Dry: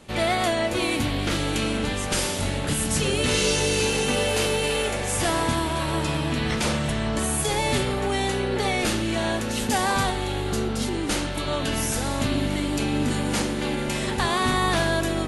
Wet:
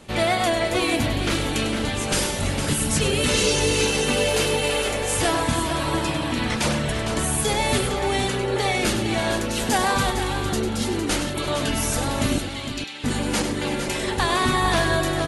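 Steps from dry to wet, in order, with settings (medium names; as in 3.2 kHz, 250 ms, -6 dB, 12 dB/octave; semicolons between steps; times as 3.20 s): reverb removal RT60 0.65 s; 12.38–13.04 s: band-pass filter 3.6 kHz, Q 1.1; multi-tap echo 99/330/457 ms -9/-15.5/-8.5 dB; trim +2.5 dB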